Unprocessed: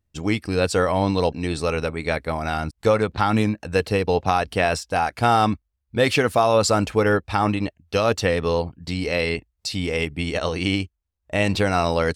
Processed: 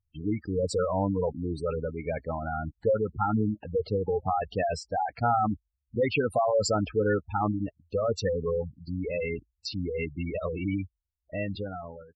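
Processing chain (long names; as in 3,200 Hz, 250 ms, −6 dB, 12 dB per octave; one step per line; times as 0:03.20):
fade-out on the ending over 1.21 s
gate on every frequency bin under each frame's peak −10 dB strong
level −5.5 dB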